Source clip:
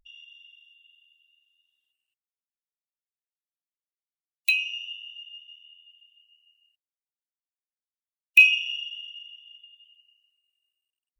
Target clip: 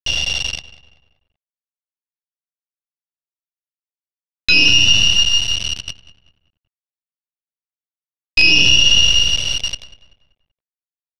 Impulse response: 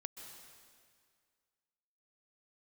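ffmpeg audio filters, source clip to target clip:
-filter_complex "[0:a]agate=range=-33dB:threshold=-51dB:ratio=3:detection=peak,equalizer=f=2.9k:w=0.89:g=2.5,areverse,acompressor=threshold=-32dB:ratio=6,areverse,acrusher=bits=5:dc=4:mix=0:aa=0.000001,lowpass=f=4.3k:t=q:w=3.8,asplit=2[a][b];[b]adelay=192,lowpass=f=2.6k:p=1,volume=-16dB,asplit=2[c][d];[d]adelay=192,lowpass=f=2.6k:p=1,volume=0.44,asplit=2[e][f];[f]adelay=192,lowpass=f=2.6k:p=1,volume=0.44,asplit=2[g][h];[h]adelay=192,lowpass=f=2.6k:p=1,volume=0.44[i];[c][e][g][i]amix=inputs=4:normalize=0[j];[a][j]amix=inputs=2:normalize=0,alimiter=level_in=28dB:limit=-1dB:release=50:level=0:latency=1,volume=-1dB"

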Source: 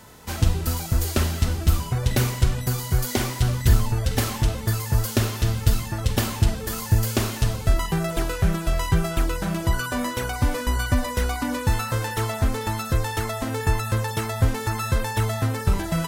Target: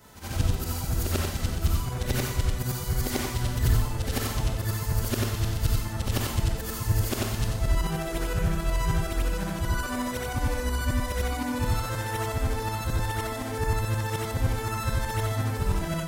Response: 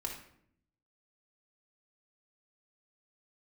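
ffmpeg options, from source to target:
-af "afftfilt=real='re':imag='-im':win_size=8192:overlap=0.75,acontrast=34,volume=-5dB"

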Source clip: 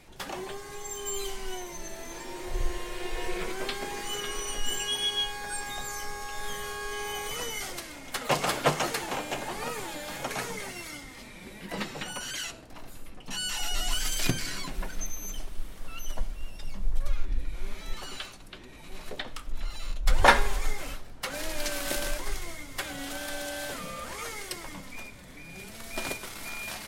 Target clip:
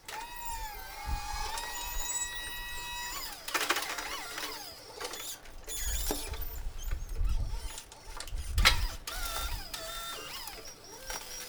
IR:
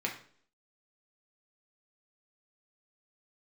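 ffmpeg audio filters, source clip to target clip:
-filter_complex "[0:a]asplit=2[a][b];[1:a]atrim=start_sample=2205[c];[b][c]afir=irnorm=-1:irlink=0,volume=-8.5dB[d];[a][d]amix=inputs=2:normalize=0,asetrate=103194,aresample=44100,bandreject=f=620:w=12,volume=-6.5dB"

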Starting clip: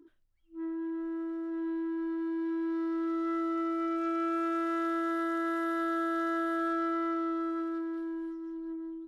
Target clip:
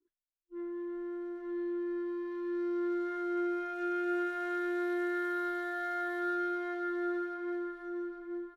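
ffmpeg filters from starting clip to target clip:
-filter_complex "[0:a]asetrate=46746,aresample=44100,agate=range=-33dB:threshold=-46dB:ratio=3:detection=peak,asplit=2[a][b];[b]adelay=820,lowpass=f=3.7k:p=1,volume=-6.5dB,asplit=2[c][d];[d]adelay=820,lowpass=f=3.7k:p=1,volume=0.27,asplit=2[e][f];[f]adelay=820,lowpass=f=3.7k:p=1,volume=0.27[g];[a][c][e][g]amix=inputs=4:normalize=0,volume=-3.5dB"

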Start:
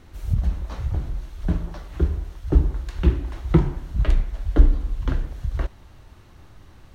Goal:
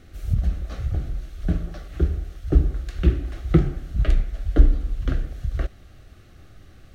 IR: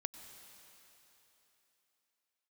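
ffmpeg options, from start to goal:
-af "asuperstop=centerf=950:order=4:qfactor=2.7"

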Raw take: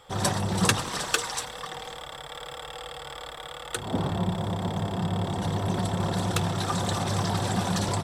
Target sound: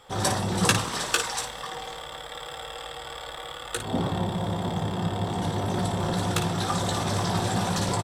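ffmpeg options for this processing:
-af "bandreject=f=60:t=h:w=6,bandreject=f=120:t=h:w=6,bandreject=f=180:t=h:w=6,aecho=1:1:17|56:0.501|0.398"

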